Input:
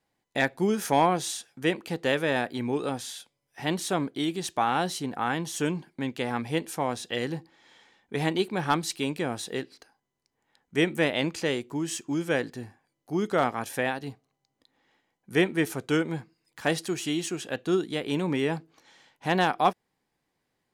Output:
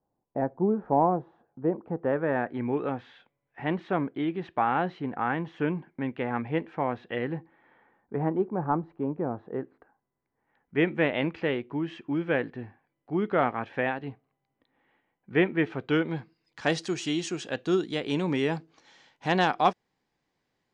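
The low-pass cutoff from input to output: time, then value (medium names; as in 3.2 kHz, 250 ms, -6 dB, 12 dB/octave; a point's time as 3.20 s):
low-pass 24 dB/octave
1.75 s 1 kHz
2.68 s 2.3 kHz
7.35 s 2.3 kHz
8.50 s 1.1 kHz
9.23 s 1.1 kHz
10.94 s 2.7 kHz
15.55 s 2.7 kHz
16.75 s 6.9 kHz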